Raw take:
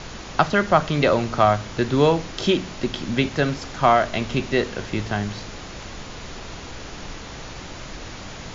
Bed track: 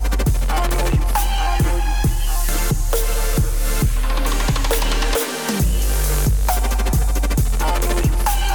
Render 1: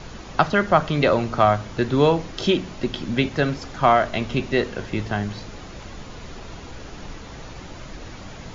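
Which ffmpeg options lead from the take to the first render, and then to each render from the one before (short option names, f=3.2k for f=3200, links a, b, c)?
-af "afftdn=nr=6:nf=-37"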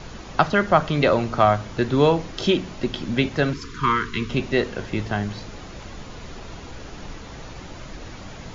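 -filter_complex "[0:a]asettb=1/sr,asplit=3[a][b][c];[a]atrim=end=3.534[d];[b]atrim=start=3.53:end=4.3,asetpts=PTS-STARTPTS,afade=t=in:d=0.004:c=qsin,afade=t=out:st=0.766:d=0.004:c=qsin,asuperstop=centerf=670:order=20:qfactor=1.4[e];[c]atrim=start=4.296[f];[d][e]acrossfade=d=0.004:c1=hsin:c2=qsin[g];[g][f]acrossfade=d=0.004:c1=qsin:c2=hsin"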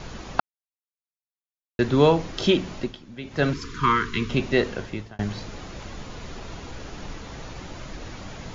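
-filter_complex "[0:a]asplit=6[a][b][c][d][e][f];[a]atrim=end=0.4,asetpts=PTS-STARTPTS,afade=t=out:st=0.396:d=0.004:c=hsin[g];[b]atrim=start=0.4:end=1.79,asetpts=PTS-STARTPTS,volume=0[h];[c]atrim=start=1.79:end=3.05,asetpts=PTS-STARTPTS,afade=t=in:d=0.004:c=hsin,afade=t=out:st=0.99:d=0.27:c=qua:silence=0.141254[i];[d]atrim=start=3.05:end=3.17,asetpts=PTS-STARTPTS,volume=-17dB[j];[e]atrim=start=3.17:end=5.19,asetpts=PTS-STARTPTS,afade=t=in:d=0.27:c=qua:silence=0.141254,afade=t=out:st=1.54:d=0.48[k];[f]atrim=start=5.19,asetpts=PTS-STARTPTS,afade=t=in:d=0.004:c=hsin[l];[g][h][i][j][k][l]concat=n=6:v=0:a=1"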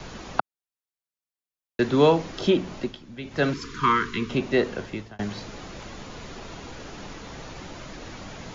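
-filter_complex "[0:a]acrossover=split=140|470|1500[a][b][c][d];[a]acompressor=threshold=-42dB:ratio=6[e];[d]alimiter=limit=-19.5dB:level=0:latency=1:release=396[f];[e][b][c][f]amix=inputs=4:normalize=0"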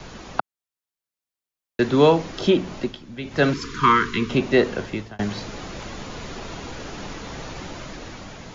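-af "dynaudnorm=f=240:g=7:m=5dB"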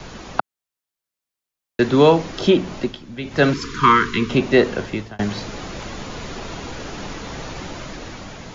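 -af "volume=3dB,alimiter=limit=-1dB:level=0:latency=1"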